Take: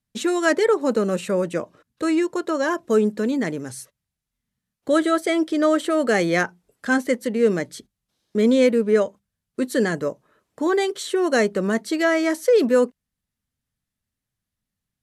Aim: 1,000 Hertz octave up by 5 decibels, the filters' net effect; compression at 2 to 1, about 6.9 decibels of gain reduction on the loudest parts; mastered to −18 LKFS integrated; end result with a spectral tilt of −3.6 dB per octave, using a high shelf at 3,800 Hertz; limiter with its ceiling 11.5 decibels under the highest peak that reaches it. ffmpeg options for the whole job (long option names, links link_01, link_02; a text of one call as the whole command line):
ffmpeg -i in.wav -af "equalizer=frequency=1000:width_type=o:gain=6,highshelf=frequency=3800:gain=9,acompressor=threshold=-24dB:ratio=2,volume=12dB,alimiter=limit=-9dB:level=0:latency=1" out.wav